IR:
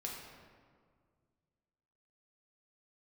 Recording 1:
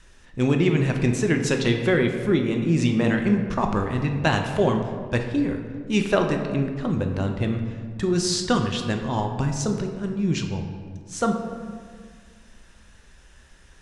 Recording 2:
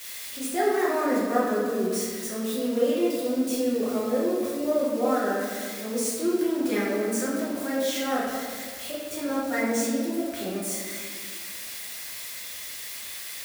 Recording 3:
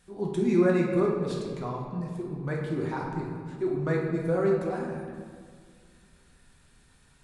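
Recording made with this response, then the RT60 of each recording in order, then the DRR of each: 3; 1.9 s, 1.9 s, 1.9 s; 3.5 dB, -8.0 dB, -2.5 dB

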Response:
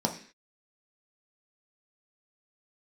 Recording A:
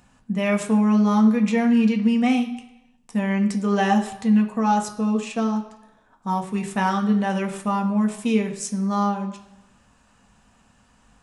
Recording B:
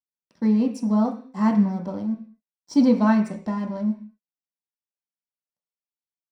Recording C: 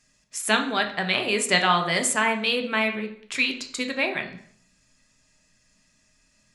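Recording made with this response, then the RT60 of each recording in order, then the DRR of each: B; 0.95 s, 0.45 s, 0.60 s; 3.0 dB, 1.5 dB, 4.5 dB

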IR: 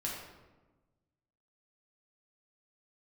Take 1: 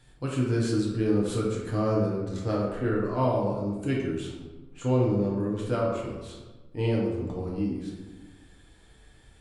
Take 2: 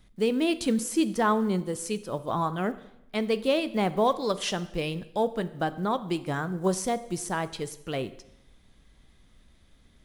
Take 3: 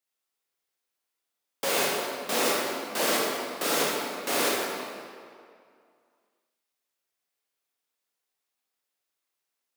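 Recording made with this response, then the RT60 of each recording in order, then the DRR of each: 1; 1.2 s, 0.80 s, 2.3 s; -4.5 dB, 13.0 dB, -5.0 dB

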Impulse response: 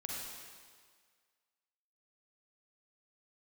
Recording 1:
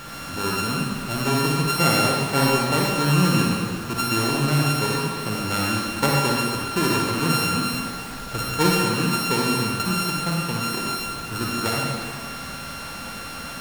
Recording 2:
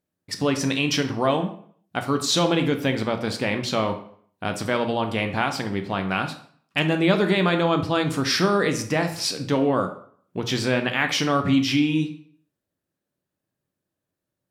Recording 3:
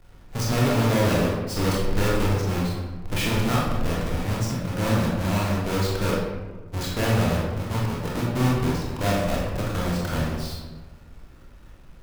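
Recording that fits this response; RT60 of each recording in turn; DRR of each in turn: 1; 1.7 s, 0.55 s, 1.3 s; -3.5 dB, 5.5 dB, -5.0 dB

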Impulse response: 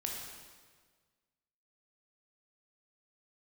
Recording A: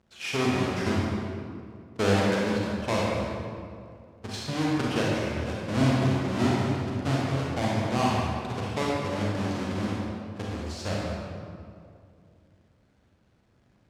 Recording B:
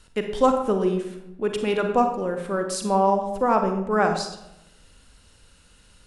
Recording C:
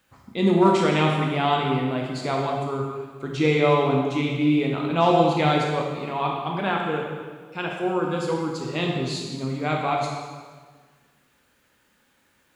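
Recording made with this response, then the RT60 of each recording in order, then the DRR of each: C; 2.3 s, 0.85 s, 1.6 s; -4.5 dB, 5.0 dB, -1.0 dB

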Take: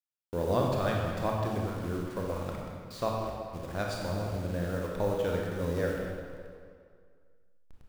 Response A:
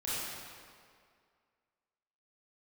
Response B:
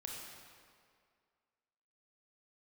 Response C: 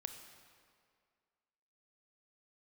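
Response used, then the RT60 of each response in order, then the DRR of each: B; 2.1 s, 2.1 s, 2.1 s; -10.5 dB, -2.0 dB, 6.5 dB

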